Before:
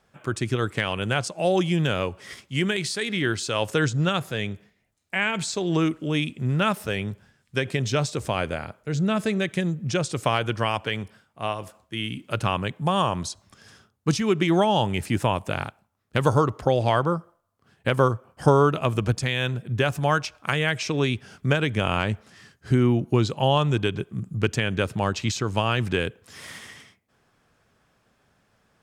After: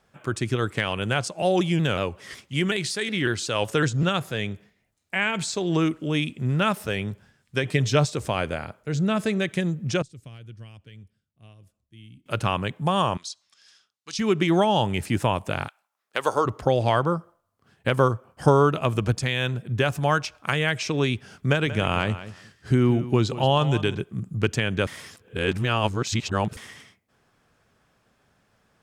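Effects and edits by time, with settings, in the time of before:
0:01.42–0:04.03: pitch modulation by a square or saw wave saw down 5.4 Hz, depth 100 cents
0:07.63–0:08.05: comb filter 6.6 ms, depth 68%
0:10.02–0:12.26: guitar amp tone stack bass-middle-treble 10-0-1
0:13.17–0:14.19: resonant band-pass 4,400 Hz, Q 1.1
0:15.67–0:16.45: high-pass filter 1,300 Hz → 350 Hz
0:21.48–0:23.95: repeating echo 184 ms, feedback 16%, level −14 dB
0:24.87–0:26.57: reverse

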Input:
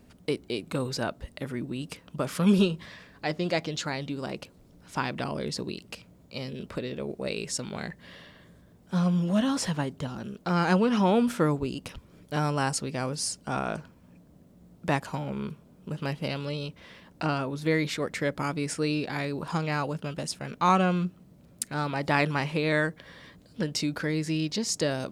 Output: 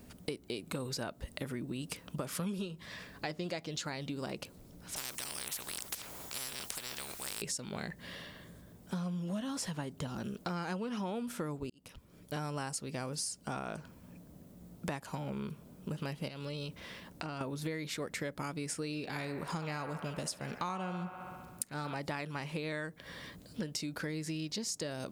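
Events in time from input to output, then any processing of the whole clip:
0:04.96–0:07.42: every bin compressed towards the loudest bin 10 to 1
0:11.70–0:12.65: fade in
0:16.28–0:17.41: downward compressor, threshold −37 dBFS
0:18.86–0:21.95: delay with a band-pass on its return 67 ms, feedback 70%, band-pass 1,100 Hz, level −8.5 dB
whole clip: high-shelf EQ 7,900 Hz +10 dB; downward compressor 10 to 1, threshold −36 dBFS; level +1 dB

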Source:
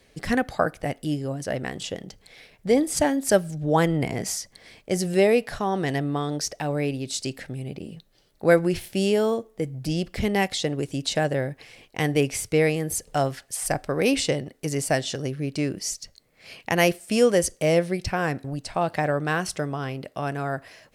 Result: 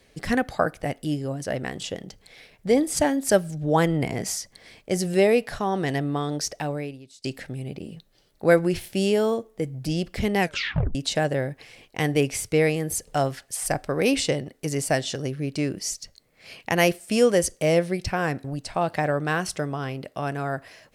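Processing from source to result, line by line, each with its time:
0:06.63–0:07.24: fade out quadratic, to −23 dB
0:10.40: tape stop 0.55 s

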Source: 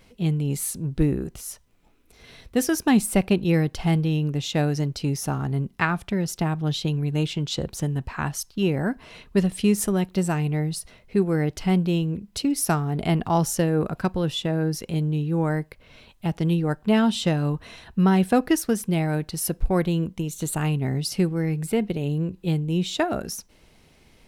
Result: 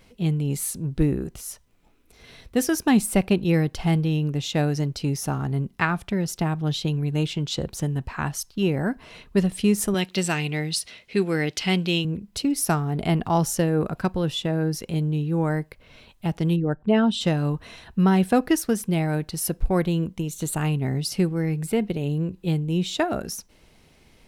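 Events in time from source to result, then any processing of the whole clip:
0:09.94–0:12.05: meter weighting curve D
0:16.56–0:17.21: spectral envelope exaggerated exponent 1.5

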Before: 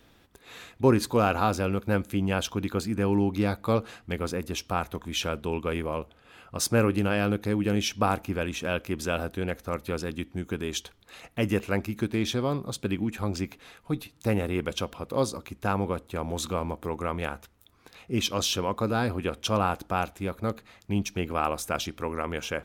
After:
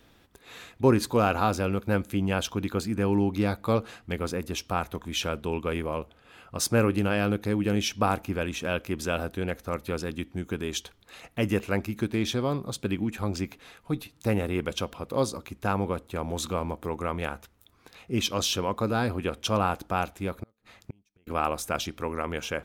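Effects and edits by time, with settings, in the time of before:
0:20.39–0:21.27: gate with flip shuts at −26 dBFS, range −38 dB

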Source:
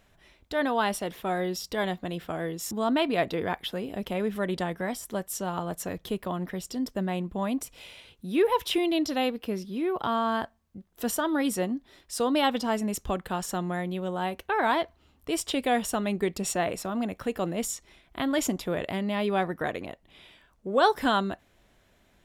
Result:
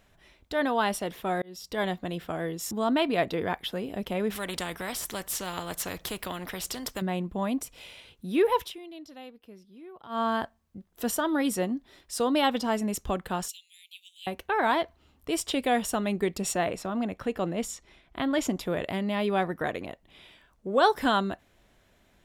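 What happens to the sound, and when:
0:01.42–0:01.82: fade in
0:04.30–0:07.02: every bin compressed towards the loudest bin 2 to 1
0:08.61–0:10.21: duck −18 dB, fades 0.12 s
0:13.48–0:14.27: Butterworth high-pass 2,500 Hz 72 dB per octave
0:16.69–0:18.56: high-shelf EQ 7,600 Hz −10 dB

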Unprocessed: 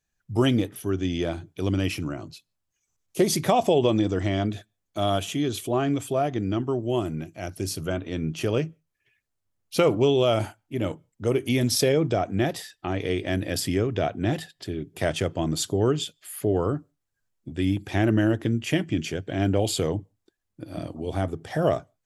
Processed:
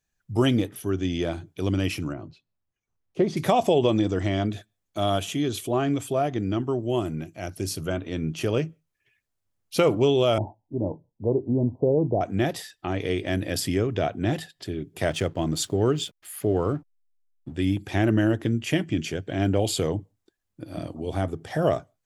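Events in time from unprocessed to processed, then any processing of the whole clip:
0:02.13–0:03.37: head-to-tape spacing loss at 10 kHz 30 dB
0:10.38–0:12.21: Butterworth low-pass 1,000 Hz 96 dB per octave
0:15.06–0:17.56: slack as between gear wheels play −48 dBFS

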